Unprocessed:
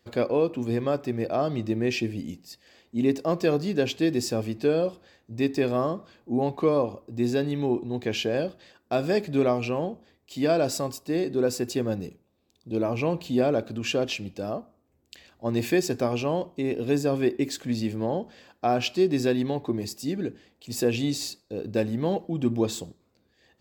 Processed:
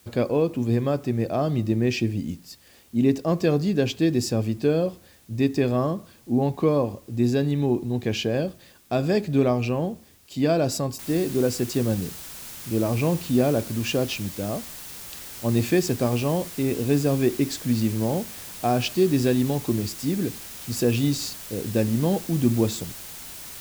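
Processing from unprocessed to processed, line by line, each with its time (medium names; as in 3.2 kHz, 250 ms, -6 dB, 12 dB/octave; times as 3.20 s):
10.99 s: noise floor step -59 dB -41 dB
whole clip: tone controls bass +8 dB, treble +2 dB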